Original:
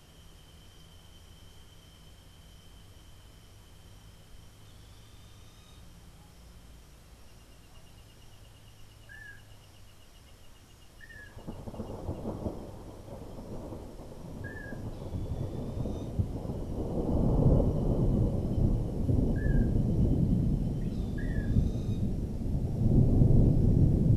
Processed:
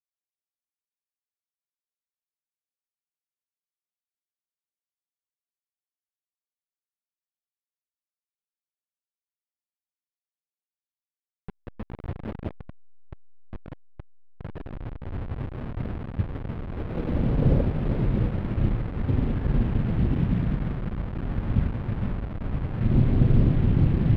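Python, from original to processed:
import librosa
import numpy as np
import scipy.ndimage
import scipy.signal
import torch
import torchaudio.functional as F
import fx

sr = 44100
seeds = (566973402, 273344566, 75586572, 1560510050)

y = fx.delta_hold(x, sr, step_db=-31.5)
y = fx.air_absorb(y, sr, metres=480.0)
y = y * 10.0 ** (4.0 / 20.0)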